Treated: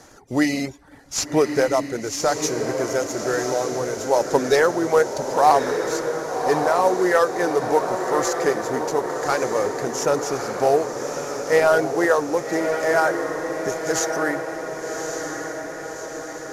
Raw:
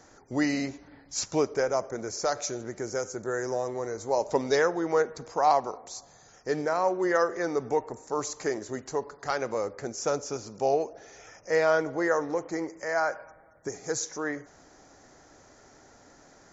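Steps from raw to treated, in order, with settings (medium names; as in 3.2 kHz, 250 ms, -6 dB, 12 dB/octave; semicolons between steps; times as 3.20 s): CVSD coder 64 kbps; reverb removal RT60 0.51 s; echo that smears into a reverb 1158 ms, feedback 61%, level -6 dB; trim +7.5 dB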